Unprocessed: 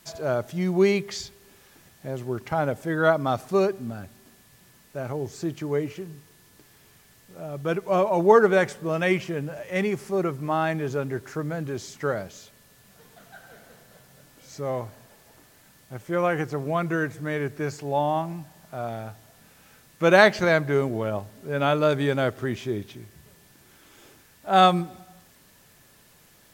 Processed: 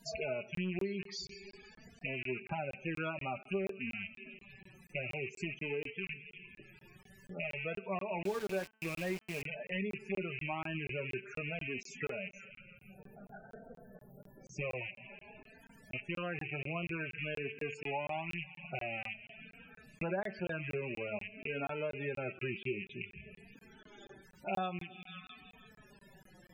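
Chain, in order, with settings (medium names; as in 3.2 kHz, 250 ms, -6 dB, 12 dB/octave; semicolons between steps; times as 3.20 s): rattle on loud lows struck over -40 dBFS, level -17 dBFS; 12.30–14.61 s: peaking EQ 3 kHz -11 dB 2.6 oct; feedback echo behind a high-pass 164 ms, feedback 60%, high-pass 1.6 kHz, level -18.5 dB; flange 0.51 Hz, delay 4.3 ms, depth 1.3 ms, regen +16%; compression 6:1, threshold -40 dBFS, peak gain reduction 25 dB; feedback comb 64 Hz, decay 0.21 s, harmonics all, mix 40%; loudest bins only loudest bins 32; 8.25–9.42 s: small samples zeroed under -48.5 dBFS; peaking EQ 1.3 kHz -3.5 dB 0.41 oct; de-hum 219.3 Hz, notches 14; crackling interface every 0.24 s, samples 1024, zero, from 0.55 s; trim +7 dB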